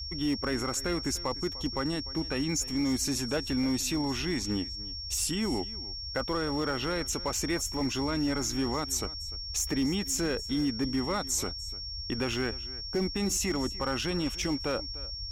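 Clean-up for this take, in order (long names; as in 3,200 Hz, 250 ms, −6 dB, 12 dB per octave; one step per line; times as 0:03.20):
clipped peaks rebuilt −22.5 dBFS
notch filter 5,500 Hz, Q 30
noise reduction from a noise print 30 dB
echo removal 298 ms −18.5 dB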